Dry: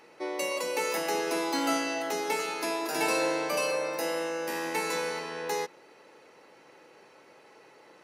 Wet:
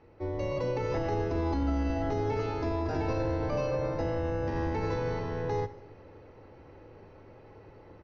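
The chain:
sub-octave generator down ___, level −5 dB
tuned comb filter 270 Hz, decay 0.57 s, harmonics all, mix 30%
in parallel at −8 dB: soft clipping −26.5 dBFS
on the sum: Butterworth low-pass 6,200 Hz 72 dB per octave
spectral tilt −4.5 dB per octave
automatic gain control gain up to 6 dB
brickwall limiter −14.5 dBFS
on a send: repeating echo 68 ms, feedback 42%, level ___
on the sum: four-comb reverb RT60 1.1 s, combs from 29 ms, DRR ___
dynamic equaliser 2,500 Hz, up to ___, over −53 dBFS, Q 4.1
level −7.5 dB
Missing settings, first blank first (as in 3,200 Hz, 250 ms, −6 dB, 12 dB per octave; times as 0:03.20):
2 octaves, −24 dB, 15 dB, −4 dB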